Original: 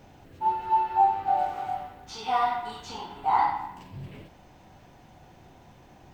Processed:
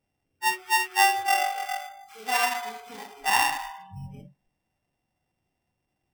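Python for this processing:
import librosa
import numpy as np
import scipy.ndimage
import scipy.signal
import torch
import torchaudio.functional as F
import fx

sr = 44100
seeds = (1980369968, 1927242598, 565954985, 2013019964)

y = np.r_[np.sort(x[:len(x) // 16 * 16].reshape(-1, 16), axis=1).ravel(), x[len(x) // 16 * 16:]]
y = fx.rev_spring(y, sr, rt60_s=1.6, pass_ms=(43,), chirp_ms=55, drr_db=11.5)
y = fx.noise_reduce_blind(y, sr, reduce_db=27)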